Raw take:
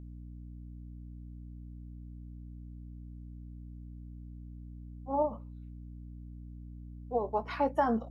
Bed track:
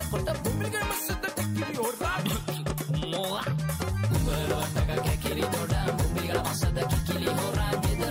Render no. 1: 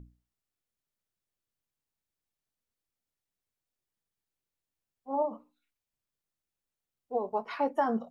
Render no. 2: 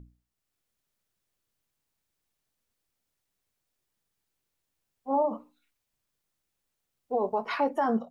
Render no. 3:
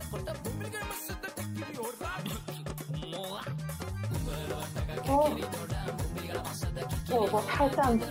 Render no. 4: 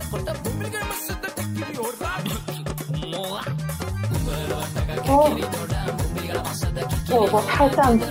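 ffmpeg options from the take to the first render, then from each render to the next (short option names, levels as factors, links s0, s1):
-af "bandreject=f=60:t=h:w=6,bandreject=f=120:t=h:w=6,bandreject=f=180:t=h:w=6,bandreject=f=240:t=h:w=6,bandreject=f=300:t=h:w=6"
-af "dynaudnorm=f=280:g=3:m=2.37,alimiter=limit=0.133:level=0:latency=1:release=72"
-filter_complex "[1:a]volume=0.398[s0];[0:a][s0]amix=inputs=2:normalize=0"
-af "volume=2.99"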